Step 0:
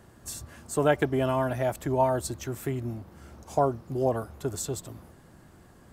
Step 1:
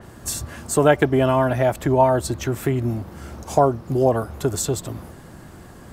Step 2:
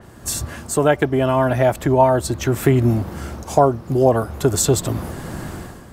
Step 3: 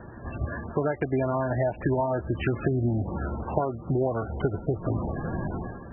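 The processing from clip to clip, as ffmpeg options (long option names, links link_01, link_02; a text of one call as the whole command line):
ffmpeg -i in.wav -filter_complex "[0:a]asplit=2[link_01][link_02];[link_02]acompressor=threshold=-33dB:ratio=6,volume=-0.5dB[link_03];[link_01][link_03]amix=inputs=2:normalize=0,adynamicequalizer=threshold=0.00447:dfrequency=4700:dqfactor=0.7:tfrequency=4700:tqfactor=0.7:attack=5:release=100:ratio=0.375:range=3:mode=cutabove:tftype=highshelf,volume=6dB" out.wav
ffmpeg -i in.wav -af "dynaudnorm=framelen=110:gausssize=7:maxgain=13.5dB,volume=-1dB" out.wav
ffmpeg -i in.wav -af "acompressor=threshold=-21dB:ratio=16,highshelf=frequency=4300:gain=-5" -ar 22050 -c:a libmp3lame -b:a 8k out.mp3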